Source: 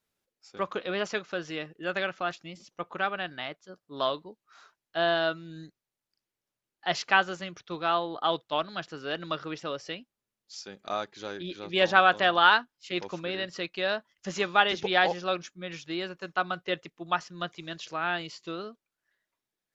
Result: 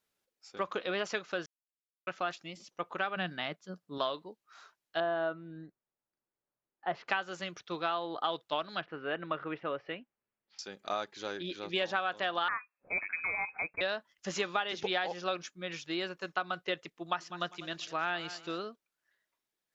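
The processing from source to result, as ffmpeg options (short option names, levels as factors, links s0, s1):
-filter_complex "[0:a]asettb=1/sr,asplit=3[s0][s1][s2];[s0]atrim=end=3.164[s3];[s1]atrim=start=3.16:end=3.98,asetpts=PTS-STARTPTS,afade=t=in:d=0.004:c=qsin,afade=t=out:st=0.816:d=0.004:c=qsin,equalizer=f=180:t=o:w=0.77:g=13[s4];[s2]atrim=start=3.976[s5];[s3][s4]acrossfade=d=0.004:c1=hsin:c2=qsin[s6];[s6][s5]acrossfade=d=0.004:c1=qsin:c2=hsin,asettb=1/sr,asplit=3[s7][s8][s9];[s7]atrim=end=5.004[s10];[s8]atrim=start=5:end=7.08,asetpts=PTS-STARTPTS,afade=t=in:d=0.004:c=qsin,afade=t=out:st=2.076:d=0.004:c=qsin,lowpass=1300[s11];[s9]atrim=start=7.076[s12];[s10][s11]acrossfade=d=0.004:c1=hsin:c2=qsin[s13];[s13][s12]acrossfade=d=0.004:c1=qsin:c2=hsin,asettb=1/sr,asplit=3[s14][s15][s16];[s14]atrim=end=8.814[s17];[s15]atrim=start=8.81:end=10.59,asetpts=PTS-STARTPTS,afade=t=in:d=0.004:c=qsin,afade=t=out:st=1.776:d=0.004:c=qsin,lowpass=f=2500:w=0.5412,lowpass=f=2500:w=1.3066[s18];[s16]atrim=start=10.586[s19];[s17][s18]acrossfade=d=0.004:c1=hsin:c2=qsin[s20];[s20][s19]acrossfade=d=0.004:c1=qsin:c2=hsin,asettb=1/sr,asplit=3[s21][s22][s23];[s21]atrim=end=12.484[s24];[s22]atrim=start=12.48:end=13.81,asetpts=PTS-STARTPTS,afade=t=in:d=0.004:c=qsin,afade=t=out:st=1.326:d=0.004:c=qsin,lowpass=f=2300:t=q:w=0.5098,lowpass=f=2300:t=q:w=0.6013,lowpass=f=2300:t=q:w=0.9,lowpass=f=2300:t=q:w=2.563,afreqshift=-2700[s25];[s23]atrim=start=13.806[s26];[s24][s25]acrossfade=d=0.004:c1=hsin:c2=qsin[s27];[s27][s26]acrossfade=d=0.004:c1=qsin:c2=hsin,asettb=1/sr,asplit=3[s28][s29][s30];[s28]atrim=end=16.984[s31];[s29]atrim=start=16.98:end=18.63,asetpts=PTS-STARTPTS,afade=t=in:d=0.004:c=qsin,afade=t=out:st=1.646:d=0.004:c=qsin,aecho=1:1:199|398|597:0.141|0.0396|0.0111,atrim=end_sample=72765[s32];[s30]atrim=start=18.626[s33];[s31][s32]acrossfade=d=0.004:c1=hsin:c2=qsin[s34];[s34][s33]acrossfade=d=0.004:c1=qsin:c2=hsin,asplit=3[s35][s36][s37];[s35]atrim=end=1.46,asetpts=PTS-STARTPTS,afade=t=out:st=1.456:d=0.004:c=hsin[s38];[s36]atrim=start=1.46:end=2.07,asetpts=PTS-STARTPTS,volume=0[s39];[s37]atrim=start=2.07,asetpts=PTS-STARTPTS,afade=t=in:d=0.004:c=hsin[s40];[s38][s39][s40]concat=n=3:v=0:a=1,lowshelf=f=200:g=-7.5,acompressor=threshold=0.0398:ratio=10"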